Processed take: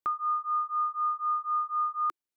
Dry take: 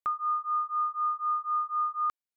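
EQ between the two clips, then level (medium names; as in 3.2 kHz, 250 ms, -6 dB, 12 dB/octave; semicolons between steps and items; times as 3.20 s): peaking EQ 340 Hz +8.5 dB 0.53 oct; 0.0 dB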